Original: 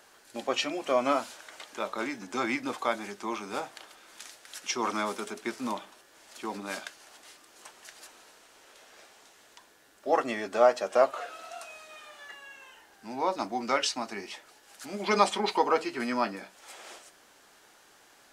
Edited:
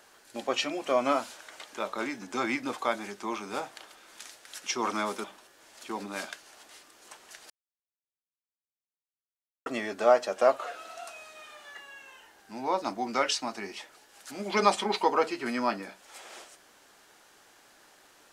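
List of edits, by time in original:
5.24–5.78 s: delete
8.04–10.20 s: mute

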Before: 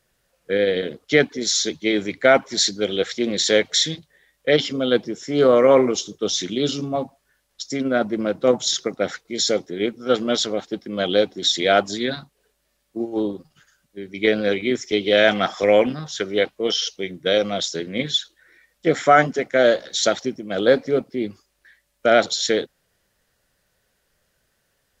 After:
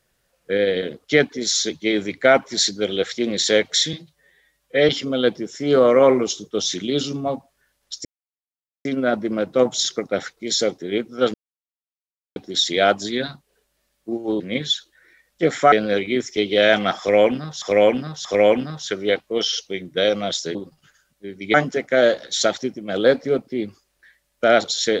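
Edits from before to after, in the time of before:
3.93–4.57 s: stretch 1.5×
7.73 s: insert silence 0.80 s
10.22–11.24 s: mute
13.28–14.27 s: swap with 17.84–19.16 s
15.54–16.17 s: loop, 3 plays

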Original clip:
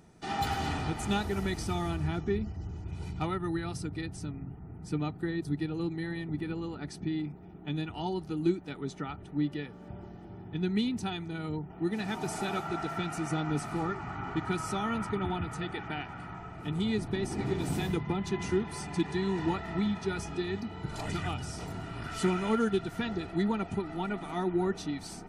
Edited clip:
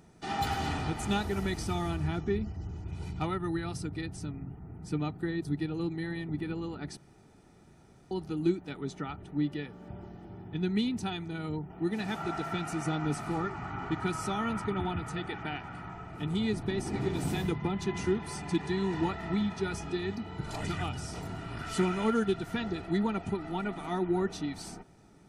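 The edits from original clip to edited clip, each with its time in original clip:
6.97–8.11 s: room tone
12.16–12.61 s: delete

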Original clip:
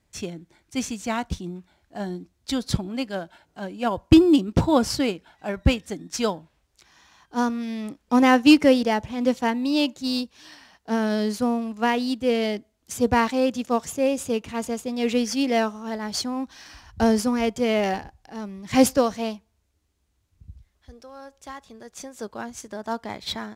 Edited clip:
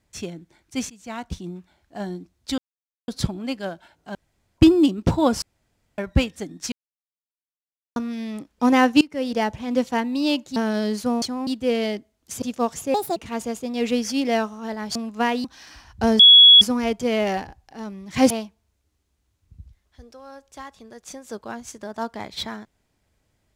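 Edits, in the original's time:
0.90–1.49 s: fade in, from -20 dB
2.58 s: insert silence 0.50 s
3.65–4.08 s: room tone
4.92–5.48 s: room tone
6.22–7.46 s: mute
8.51–8.88 s: fade in quadratic, from -23 dB
10.06–10.92 s: delete
11.58–12.07 s: swap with 16.18–16.43 s
13.02–13.53 s: delete
14.05–14.39 s: speed 152%
17.18 s: add tone 3.36 kHz -6 dBFS 0.42 s
18.87–19.20 s: delete

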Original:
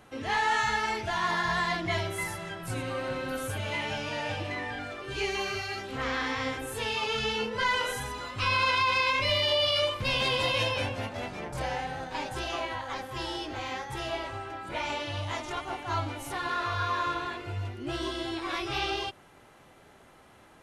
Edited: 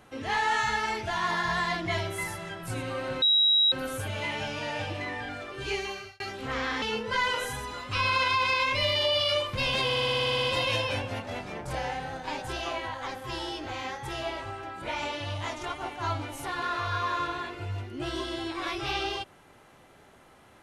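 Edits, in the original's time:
3.22 s: add tone 3.85 kHz -18.5 dBFS 0.50 s
5.22–5.70 s: fade out
6.32–7.29 s: delete
10.31 s: stutter 0.06 s, 11 plays

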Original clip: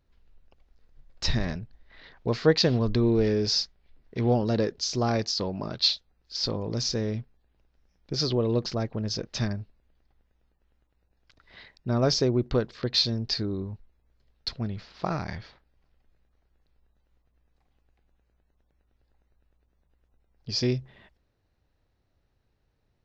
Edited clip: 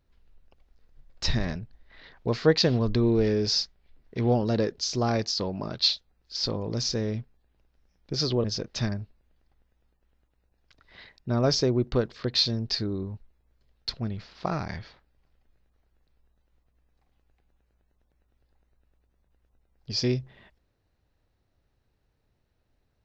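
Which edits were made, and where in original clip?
8.44–9.03 s: delete

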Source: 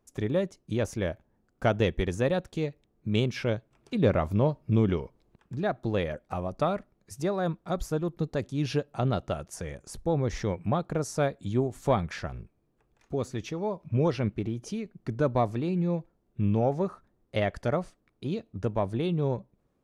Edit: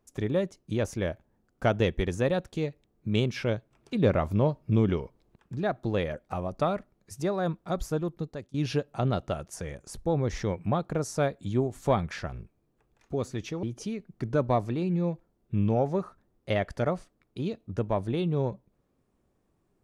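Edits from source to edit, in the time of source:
8.00–8.54 s: fade out, to -19.5 dB
13.63–14.49 s: delete

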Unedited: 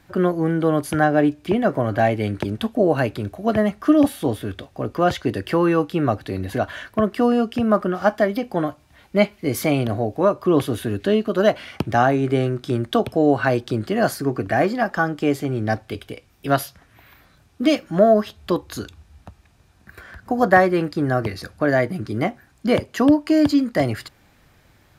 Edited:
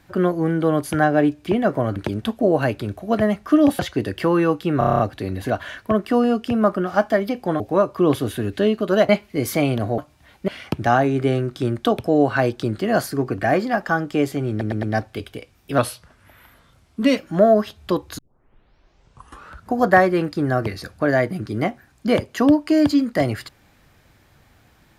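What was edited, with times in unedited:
1.96–2.32 s: delete
4.15–5.08 s: delete
6.07 s: stutter 0.03 s, 8 plays
8.68–9.18 s: swap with 10.07–11.56 s
15.58 s: stutter 0.11 s, 4 plays
16.53–17.77 s: speed 89%
18.78 s: tape start 1.56 s

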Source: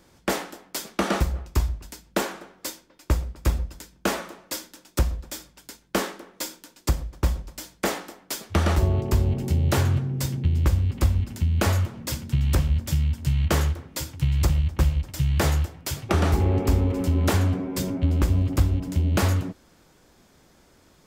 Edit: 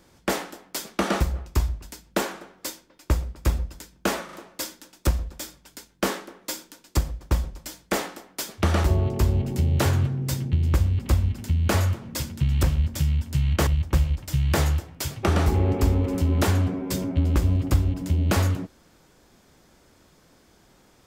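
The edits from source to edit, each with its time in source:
4.25 s: stutter 0.04 s, 3 plays
13.59–14.53 s: delete

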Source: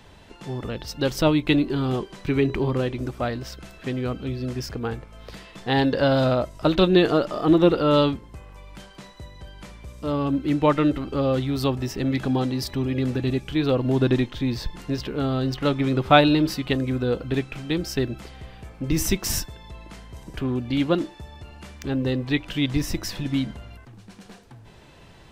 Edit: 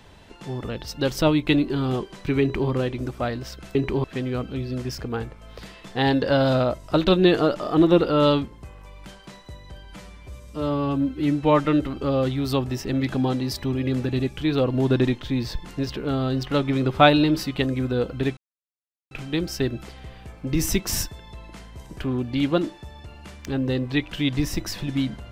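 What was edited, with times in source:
2.41–2.70 s: copy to 3.75 s
9.56–10.76 s: stretch 1.5×
17.48 s: insert silence 0.74 s

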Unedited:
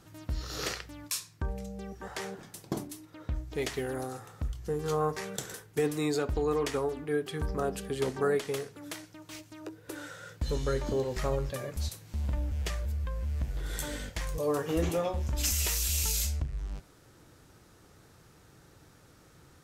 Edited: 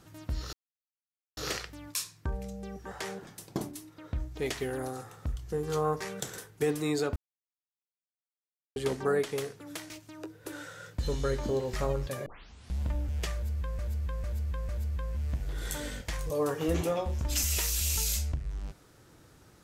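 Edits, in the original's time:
0.53 s: insert silence 0.84 s
6.32–7.92 s: mute
9.06–9.33 s: delete
11.69 s: tape start 0.54 s
12.77–13.22 s: loop, 4 plays

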